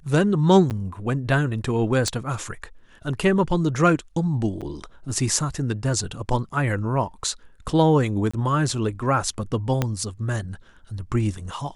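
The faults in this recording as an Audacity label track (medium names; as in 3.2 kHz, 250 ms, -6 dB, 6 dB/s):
0.700000	0.710000	dropout 9.1 ms
2.080000	2.080000	pop -10 dBFS
4.610000	4.620000	dropout 6.6 ms
8.310000	8.340000	dropout 25 ms
9.820000	9.820000	pop -8 dBFS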